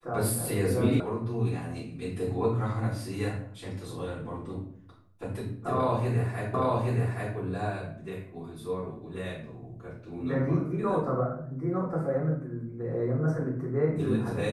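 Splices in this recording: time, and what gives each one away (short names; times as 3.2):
1 sound cut off
6.54 repeat of the last 0.82 s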